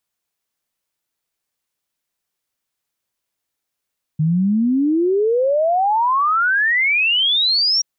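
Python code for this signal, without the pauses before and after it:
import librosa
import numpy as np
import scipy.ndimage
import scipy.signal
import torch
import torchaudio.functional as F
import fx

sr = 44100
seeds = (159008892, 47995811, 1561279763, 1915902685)

y = fx.ess(sr, length_s=3.63, from_hz=150.0, to_hz=5700.0, level_db=-13.5)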